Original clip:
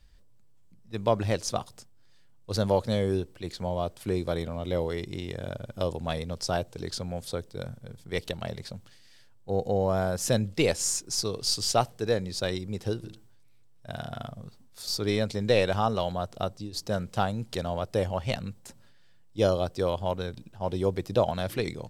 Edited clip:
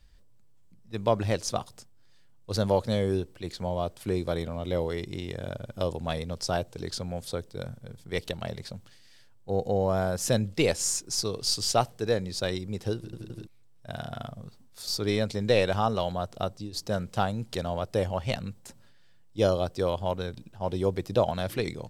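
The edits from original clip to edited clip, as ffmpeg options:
-filter_complex "[0:a]asplit=4[a][b][c][d];[a]atrim=end=13.132[e];[b]atrim=start=12.958:end=13.132[f];[c]atrim=start=12.958:end=13.132[g];[d]atrim=start=13.468[h];[e][f]acrossfade=d=0.004:c1=hsin:c2=hsin[i];[i][g]acrossfade=d=0.004:c1=hsin:c2=hsin[j];[j][h]acrossfade=d=0.004:c1=hsin:c2=hsin"

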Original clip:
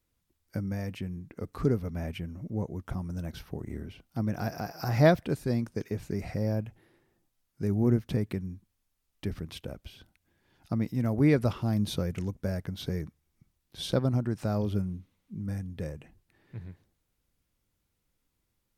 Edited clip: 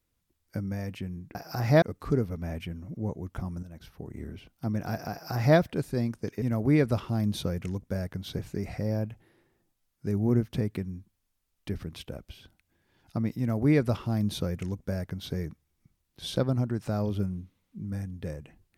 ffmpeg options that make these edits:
-filter_complex "[0:a]asplit=6[a][b][c][d][e][f];[a]atrim=end=1.352[g];[b]atrim=start=4.638:end=5.112[h];[c]atrim=start=1.348:end=3.16,asetpts=PTS-STARTPTS,afade=t=out:st=1.808:d=0.004:c=hsin:silence=0.237137[i];[d]atrim=start=3.16:end=5.952,asetpts=PTS-STARTPTS,afade=t=in:d=0.72:silence=0.237137[j];[e]atrim=start=10.948:end=12.922[k];[f]atrim=start=5.948[l];[g][h]acrossfade=d=0.004:c1=hsin:c2=hsin[m];[i][j]concat=n=2:v=0:a=1[n];[m][n]acrossfade=d=0.004:c1=hsin:c2=hsin[o];[o][k]acrossfade=d=0.004:c1=hsin:c2=hsin[p];[p][l]acrossfade=d=0.004:c1=hsin:c2=hsin"

